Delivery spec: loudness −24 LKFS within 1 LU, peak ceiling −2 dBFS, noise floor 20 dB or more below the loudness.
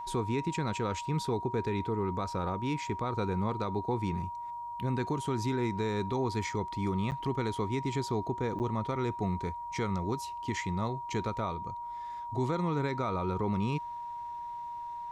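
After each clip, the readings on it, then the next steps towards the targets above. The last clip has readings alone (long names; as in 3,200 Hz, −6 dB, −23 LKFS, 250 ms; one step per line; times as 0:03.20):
number of dropouts 2; longest dropout 9.1 ms; interfering tone 950 Hz; level of the tone −37 dBFS; integrated loudness −33.5 LKFS; sample peak −21.5 dBFS; target loudness −24.0 LKFS
→ repair the gap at 0:07.11/0:08.59, 9.1 ms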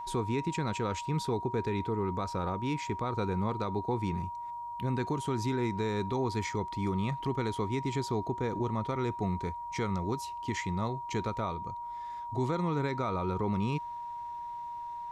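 number of dropouts 0; interfering tone 950 Hz; level of the tone −37 dBFS
→ notch filter 950 Hz, Q 30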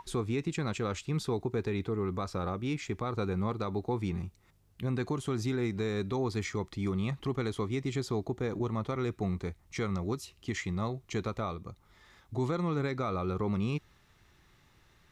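interfering tone none found; integrated loudness −34.0 LKFS; sample peak −23.0 dBFS; target loudness −24.0 LKFS
→ level +10 dB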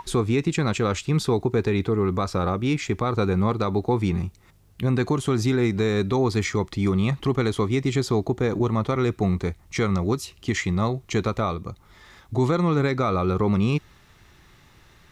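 integrated loudness −24.0 LKFS; sample peak −13.0 dBFS; background noise floor −55 dBFS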